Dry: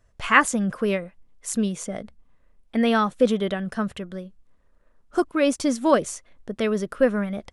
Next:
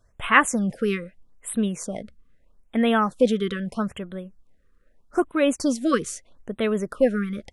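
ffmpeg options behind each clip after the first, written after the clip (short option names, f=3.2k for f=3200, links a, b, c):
-af "afftfilt=real='re*(1-between(b*sr/1024,720*pow(5900/720,0.5+0.5*sin(2*PI*0.79*pts/sr))/1.41,720*pow(5900/720,0.5+0.5*sin(2*PI*0.79*pts/sr))*1.41))':imag='im*(1-between(b*sr/1024,720*pow(5900/720,0.5+0.5*sin(2*PI*0.79*pts/sr))/1.41,720*pow(5900/720,0.5+0.5*sin(2*PI*0.79*pts/sr))*1.41))':win_size=1024:overlap=0.75"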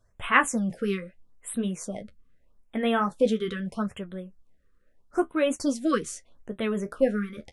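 -af "flanger=delay=9.4:depth=6.7:regen=-41:speed=0.51:shape=triangular"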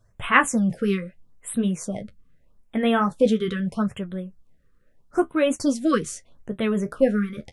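-af "equalizer=f=130:t=o:w=1:g=8,volume=3dB"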